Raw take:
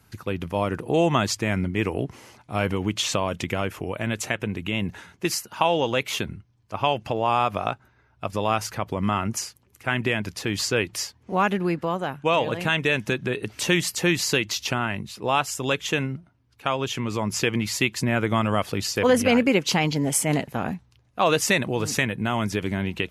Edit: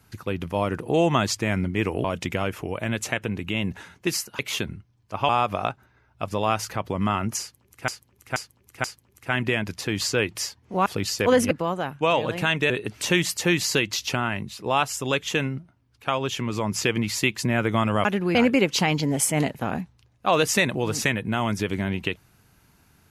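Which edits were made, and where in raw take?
0:02.04–0:03.22: remove
0:05.57–0:05.99: remove
0:06.89–0:07.31: remove
0:09.42–0:09.90: repeat, 4 plays
0:11.44–0:11.74: swap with 0:18.63–0:19.28
0:12.93–0:13.28: remove

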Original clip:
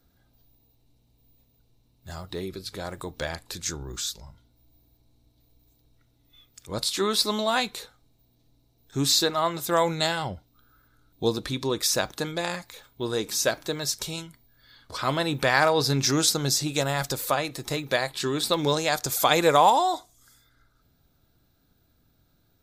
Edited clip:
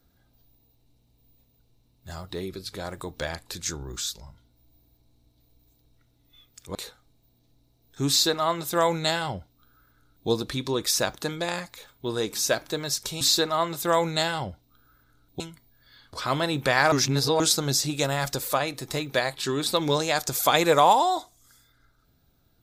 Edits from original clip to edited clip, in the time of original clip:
0:06.75–0:07.71: remove
0:09.05–0:11.24: duplicate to 0:14.17
0:15.69–0:16.17: reverse

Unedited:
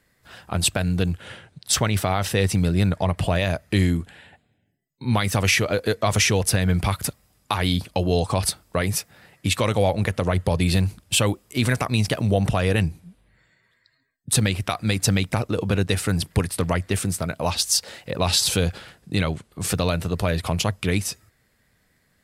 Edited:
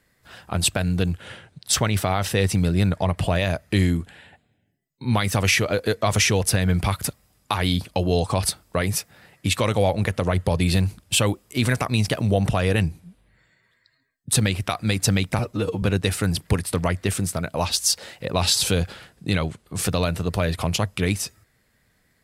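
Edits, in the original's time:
0:15.39–0:15.68: time-stretch 1.5×

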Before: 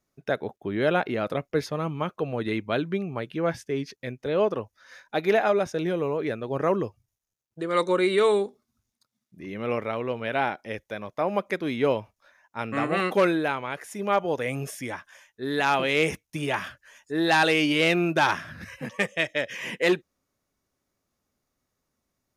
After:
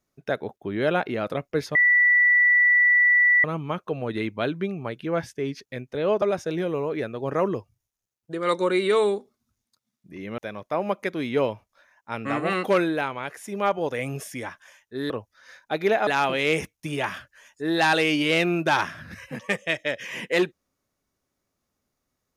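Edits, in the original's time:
0:01.75: insert tone 1,960 Hz −14.5 dBFS 1.69 s
0:04.53–0:05.50: move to 0:15.57
0:09.66–0:10.85: remove

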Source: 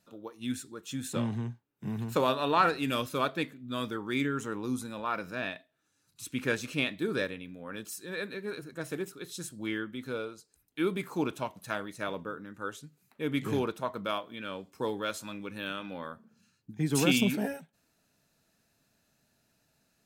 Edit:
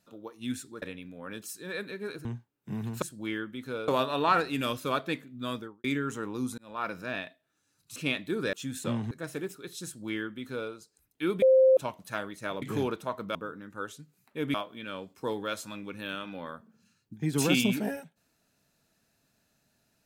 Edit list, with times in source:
0:00.82–0:01.40: swap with 0:07.25–0:08.68
0:03.77–0:04.13: fade out and dull
0:04.87–0:05.14: fade in
0:06.25–0:06.68: remove
0:09.42–0:10.28: duplicate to 0:02.17
0:10.99–0:11.34: beep over 524 Hz −16 dBFS
0:13.38–0:14.11: move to 0:12.19

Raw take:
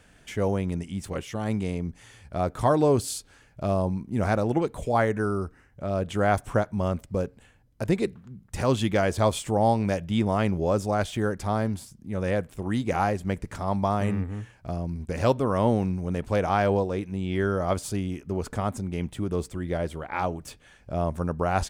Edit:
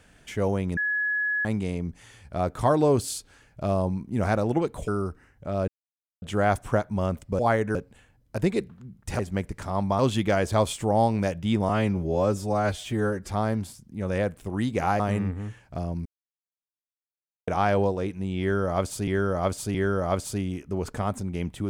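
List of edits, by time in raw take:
0:00.77–0:01.45: beep over 1,690 Hz −23 dBFS
0:04.88–0:05.24: move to 0:07.21
0:06.04: splice in silence 0.54 s
0:10.35–0:11.42: time-stretch 1.5×
0:13.12–0:13.92: move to 0:08.65
0:14.98–0:16.40: silence
0:17.33–0:18.00: repeat, 3 plays

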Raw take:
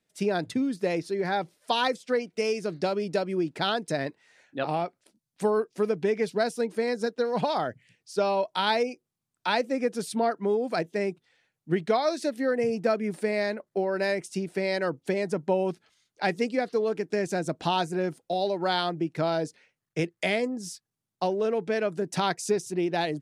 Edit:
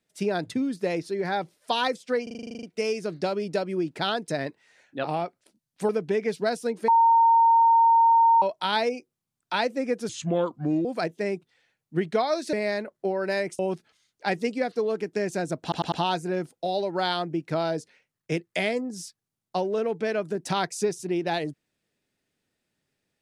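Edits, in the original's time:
0:02.23: stutter 0.04 s, 11 plays
0:05.49–0:05.83: remove
0:06.82–0:08.36: beep over 918 Hz −14.5 dBFS
0:10.03–0:10.60: play speed 75%
0:12.28–0:13.25: remove
0:14.31–0:15.56: remove
0:17.59: stutter 0.10 s, 4 plays

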